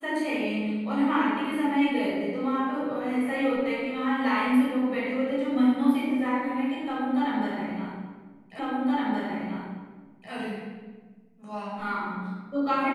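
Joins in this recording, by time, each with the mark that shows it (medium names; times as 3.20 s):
8.59 s: repeat of the last 1.72 s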